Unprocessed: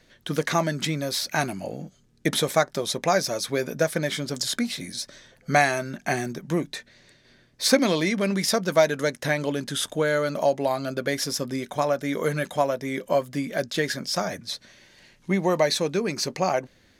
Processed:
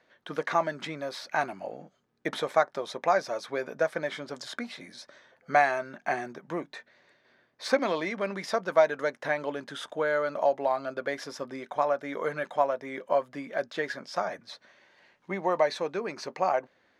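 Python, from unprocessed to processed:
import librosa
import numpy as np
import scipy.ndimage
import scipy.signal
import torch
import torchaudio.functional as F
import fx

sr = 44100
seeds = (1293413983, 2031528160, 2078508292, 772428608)

y = fx.bandpass_q(x, sr, hz=960.0, q=0.98)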